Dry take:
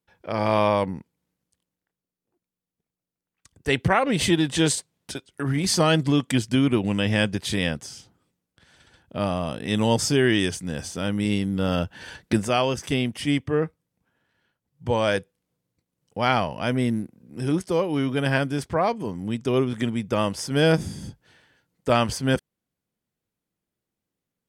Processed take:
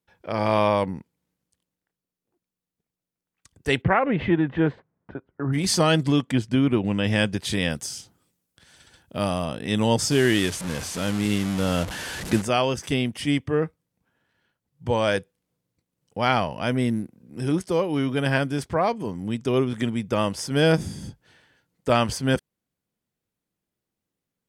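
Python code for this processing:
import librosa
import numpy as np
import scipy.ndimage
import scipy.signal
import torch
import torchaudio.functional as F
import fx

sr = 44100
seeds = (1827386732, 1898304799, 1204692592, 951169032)

y = fx.lowpass(x, sr, hz=fx.line((3.81, 2600.0), (5.52, 1300.0)), slope=24, at=(3.81, 5.52), fade=0.02)
y = fx.high_shelf(y, sr, hz=fx.line((6.21, 3200.0), (7.03, 5400.0)), db=-12.0, at=(6.21, 7.03), fade=0.02)
y = fx.high_shelf(y, sr, hz=5200.0, db=11.0, at=(7.7, 9.46))
y = fx.delta_mod(y, sr, bps=64000, step_db=-27.0, at=(10.11, 12.42))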